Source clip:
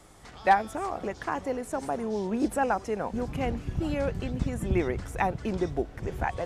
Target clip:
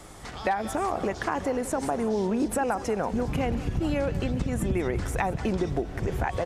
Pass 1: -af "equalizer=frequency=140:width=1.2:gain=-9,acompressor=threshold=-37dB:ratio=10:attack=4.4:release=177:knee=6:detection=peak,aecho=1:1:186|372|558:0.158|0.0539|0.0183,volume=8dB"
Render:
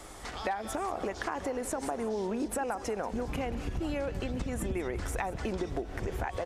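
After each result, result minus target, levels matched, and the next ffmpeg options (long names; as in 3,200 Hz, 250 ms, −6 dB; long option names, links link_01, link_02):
downward compressor: peak gain reduction +6.5 dB; 125 Hz band −2.0 dB
-af "equalizer=frequency=140:width=1.2:gain=-9,acompressor=threshold=-29.5dB:ratio=10:attack=4.4:release=177:knee=6:detection=peak,aecho=1:1:186|372|558:0.158|0.0539|0.0183,volume=8dB"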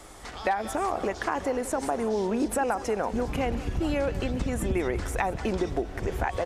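125 Hz band −3.0 dB
-af "acompressor=threshold=-29.5dB:ratio=10:attack=4.4:release=177:knee=6:detection=peak,aecho=1:1:186|372|558:0.158|0.0539|0.0183,volume=8dB"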